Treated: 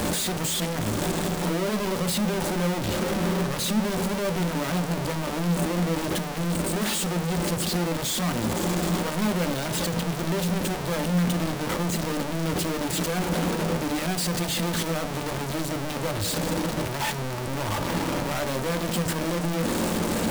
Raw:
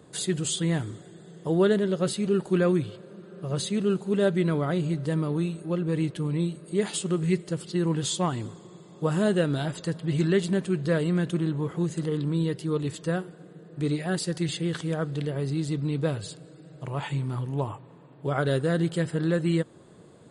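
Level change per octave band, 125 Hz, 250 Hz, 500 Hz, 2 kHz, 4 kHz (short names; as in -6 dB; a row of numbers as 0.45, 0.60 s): -0.5, +0.5, -1.0, +5.5, +7.0 dB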